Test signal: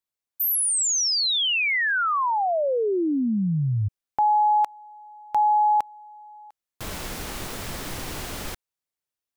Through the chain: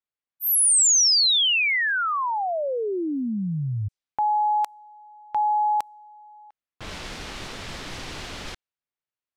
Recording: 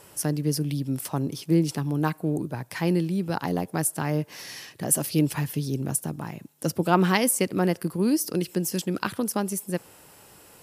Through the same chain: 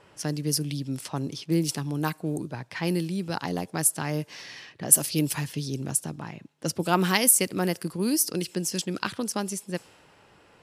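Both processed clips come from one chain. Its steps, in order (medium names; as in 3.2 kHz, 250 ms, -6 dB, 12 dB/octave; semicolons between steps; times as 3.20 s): level-controlled noise filter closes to 2.1 kHz, open at -19 dBFS; treble shelf 2.6 kHz +10.5 dB; trim -3.5 dB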